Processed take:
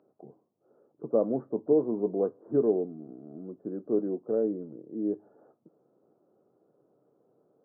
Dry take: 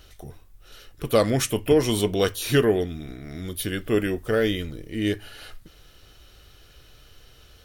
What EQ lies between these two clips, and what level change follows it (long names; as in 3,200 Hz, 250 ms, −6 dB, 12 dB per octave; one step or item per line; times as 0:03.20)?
Gaussian smoothing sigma 12 samples
Bessel high-pass filter 290 Hz, order 8
high-frequency loss of the air 250 metres
0.0 dB